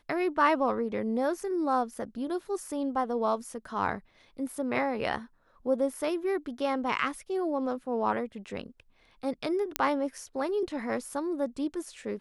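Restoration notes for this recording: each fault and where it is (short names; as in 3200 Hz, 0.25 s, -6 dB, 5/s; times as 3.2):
9.76 pop -8 dBFS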